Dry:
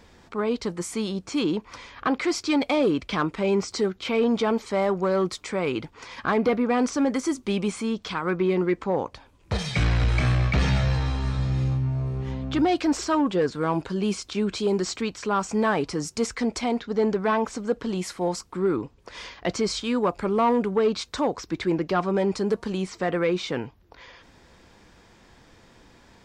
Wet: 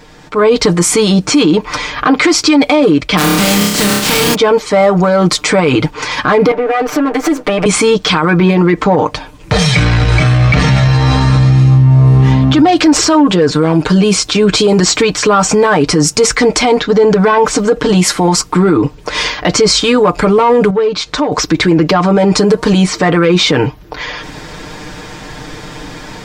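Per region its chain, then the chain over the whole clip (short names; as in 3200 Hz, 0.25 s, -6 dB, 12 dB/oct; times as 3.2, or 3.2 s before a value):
3.17–4.33 spectral contrast lowered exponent 0.27 + bell 200 Hz +15 dB 1 oct + flutter echo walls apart 5 m, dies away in 0.5 s
6.51–7.66 minimum comb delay 6.6 ms + three-band isolator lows -14 dB, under 240 Hz, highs -13 dB, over 2800 Hz + compressor, threshold -34 dBFS
20.7–21.32 LPF 6300 Hz + compressor 3:1, threshold -39 dBFS
whole clip: comb 6.6 ms, depth 77%; AGC gain up to 12 dB; maximiser +13 dB; gain -1 dB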